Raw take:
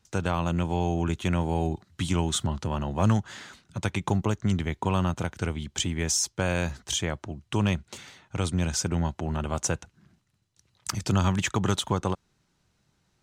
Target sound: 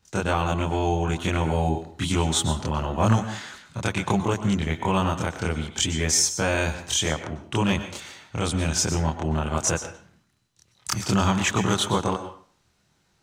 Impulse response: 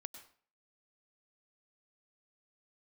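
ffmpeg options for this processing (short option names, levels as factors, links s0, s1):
-filter_complex "[0:a]asplit=2[s0][s1];[1:a]atrim=start_sample=2205,lowshelf=f=220:g=-8.5,adelay=26[s2];[s1][s2]afir=irnorm=-1:irlink=0,volume=2.66[s3];[s0][s3]amix=inputs=2:normalize=0"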